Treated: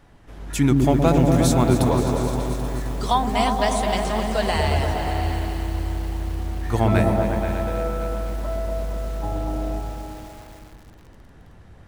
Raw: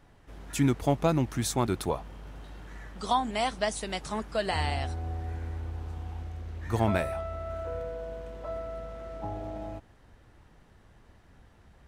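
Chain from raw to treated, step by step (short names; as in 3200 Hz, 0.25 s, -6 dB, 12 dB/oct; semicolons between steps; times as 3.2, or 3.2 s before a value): repeats that get brighter 0.119 s, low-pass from 400 Hz, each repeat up 1 oct, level 0 dB; lo-fi delay 0.262 s, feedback 80%, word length 7-bit, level -11.5 dB; gain +5.5 dB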